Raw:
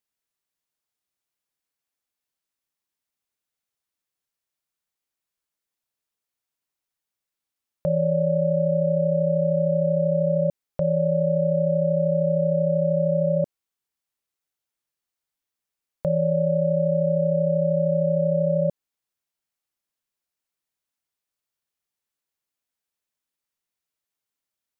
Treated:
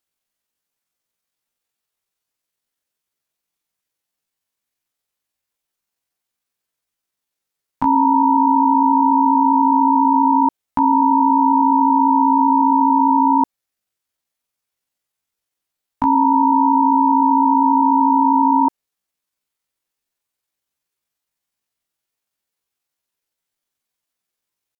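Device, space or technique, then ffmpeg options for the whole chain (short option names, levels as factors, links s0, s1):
chipmunk voice: -af "asetrate=72056,aresample=44100,atempo=0.612027,volume=2.37"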